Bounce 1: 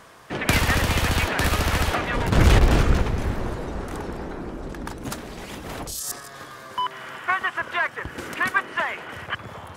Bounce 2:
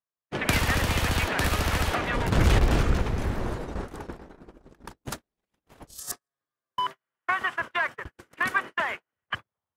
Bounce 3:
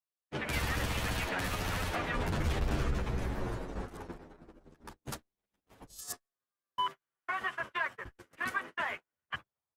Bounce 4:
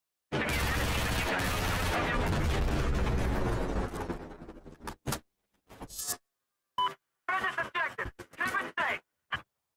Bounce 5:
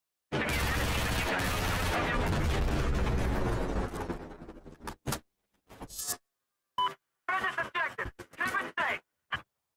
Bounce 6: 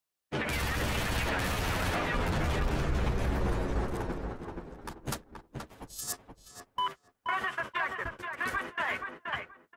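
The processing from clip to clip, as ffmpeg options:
-filter_complex "[0:a]agate=range=-53dB:threshold=-29dB:ratio=16:detection=peak,asplit=2[a][b];[b]acompressor=threshold=-26dB:ratio=6,volume=0.5dB[c];[a][c]amix=inputs=2:normalize=0,volume=-6.5dB"
-filter_complex "[0:a]alimiter=limit=-17.5dB:level=0:latency=1:release=76,asplit=2[a][b];[b]adelay=9.6,afreqshift=-0.45[c];[a][c]amix=inputs=2:normalize=1,volume=-3dB"
-af "alimiter=level_in=6dB:limit=-24dB:level=0:latency=1:release=44,volume=-6dB,volume=8.5dB"
-af anull
-filter_complex "[0:a]asplit=2[a][b];[b]adelay=477,lowpass=f=2.3k:p=1,volume=-4.5dB,asplit=2[c][d];[d]adelay=477,lowpass=f=2.3k:p=1,volume=0.21,asplit=2[e][f];[f]adelay=477,lowpass=f=2.3k:p=1,volume=0.21[g];[a][c][e][g]amix=inputs=4:normalize=0,volume=-1.5dB"

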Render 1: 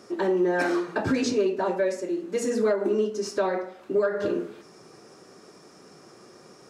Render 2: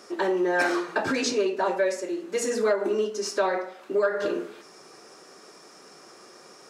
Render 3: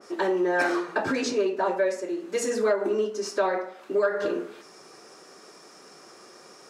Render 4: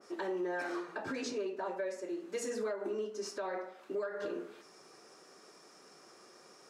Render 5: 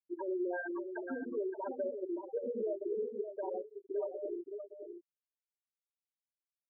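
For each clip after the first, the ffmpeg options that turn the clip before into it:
-af "highpass=f=660:p=1,volume=4.5dB"
-af "adynamicequalizer=threshold=0.00794:dfrequency=2100:dqfactor=0.7:tfrequency=2100:tqfactor=0.7:attack=5:release=100:ratio=0.375:range=2.5:mode=cutabove:tftype=highshelf"
-af "alimiter=limit=-20dB:level=0:latency=1:release=254,volume=-8.5dB"
-filter_complex "[0:a]afftfilt=real='re*gte(hypot(re,im),0.0631)':imag='im*gte(hypot(re,im),0.0631)':win_size=1024:overlap=0.75,asplit=2[a][b];[b]adelay=571.4,volume=-8dB,highshelf=f=4k:g=-12.9[c];[a][c]amix=inputs=2:normalize=0,volume=1dB"

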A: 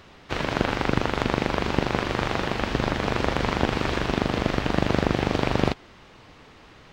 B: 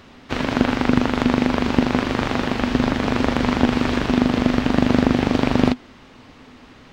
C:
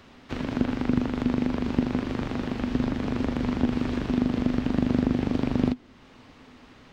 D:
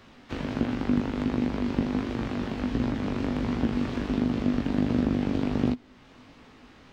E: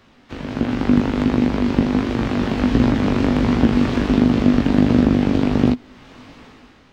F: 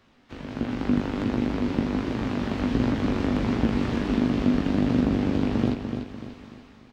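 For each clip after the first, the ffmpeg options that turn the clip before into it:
-af "equalizer=f=250:t=o:w=0.24:g=13.5,volume=2.5dB"
-filter_complex "[0:a]acrossover=split=410[a][b];[b]acompressor=threshold=-43dB:ratio=1.5[c];[a][c]amix=inputs=2:normalize=0,volume=-5.5dB"
-af "flanger=delay=17:depth=5:speed=1.4,volume=2dB"
-af "dynaudnorm=f=140:g=9:m=14dB"
-af "aecho=1:1:294|588|882|1176|1470:0.447|0.188|0.0788|0.0331|0.0139,volume=-8dB"

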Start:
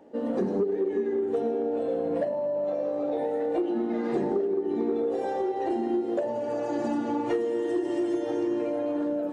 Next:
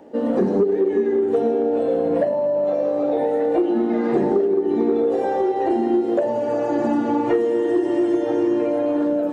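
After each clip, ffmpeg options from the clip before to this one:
-filter_complex "[0:a]acrossover=split=2600[a][b];[b]acompressor=threshold=-59dB:ratio=4:attack=1:release=60[c];[a][c]amix=inputs=2:normalize=0,volume=8dB"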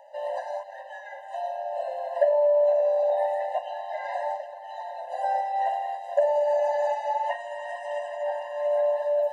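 -af "afftfilt=real='re*eq(mod(floor(b*sr/1024/520),2),1)':imag='im*eq(mod(floor(b*sr/1024/520),2),1)':win_size=1024:overlap=0.75"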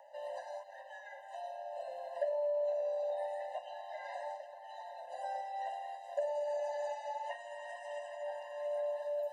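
-filter_complex "[0:a]acrossover=split=420|3000[a][b][c];[b]acompressor=threshold=-58dB:ratio=1.5[d];[a][d][c]amix=inputs=3:normalize=0,acrossover=split=810|1600[e][f][g];[f]crystalizer=i=8.5:c=0[h];[e][h][g]amix=inputs=3:normalize=0,volume=-5dB"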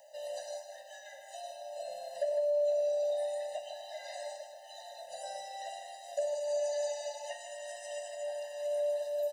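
-af "firequalizer=gain_entry='entry(230,0);entry(350,-23);entry(610,-3);entry(1000,-23);entry(1600,-10);entry(3700,4);entry(5900,9)':delay=0.05:min_phase=1,aecho=1:1:152:0.398,volume=7dB"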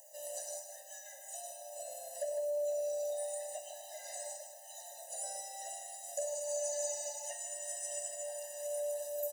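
-af "aexciter=amount=9:drive=4.2:freq=6k,volume=-5.5dB"

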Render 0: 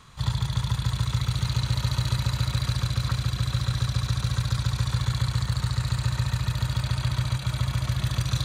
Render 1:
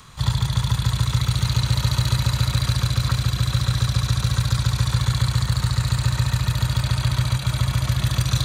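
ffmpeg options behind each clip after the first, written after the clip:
-filter_complex "[0:a]highshelf=f=8.3k:g=5,acrossover=split=320|3600[a][b][c];[c]acompressor=mode=upward:threshold=-59dB:ratio=2.5[d];[a][b][d]amix=inputs=3:normalize=0,volume=5dB"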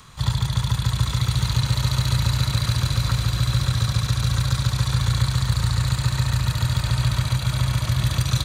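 -af "aecho=1:1:801:0.398,volume=-1dB"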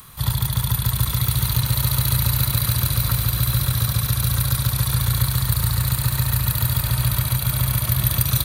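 -af "aexciter=amount=9.7:drive=7.1:freq=10k"

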